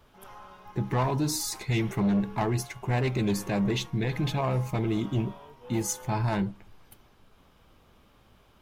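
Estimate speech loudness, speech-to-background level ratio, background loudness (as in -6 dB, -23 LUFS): -29.0 LUFS, 19.0 dB, -48.0 LUFS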